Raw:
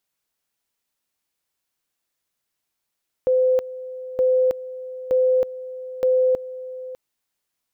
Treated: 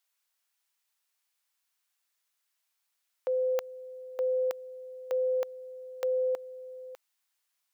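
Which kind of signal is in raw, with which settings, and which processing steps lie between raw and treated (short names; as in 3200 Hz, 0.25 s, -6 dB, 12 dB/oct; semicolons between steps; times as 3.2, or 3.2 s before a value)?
two-level tone 512 Hz -14.5 dBFS, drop 16 dB, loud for 0.32 s, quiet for 0.60 s, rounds 4
HPF 900 Hz 12 dB/oct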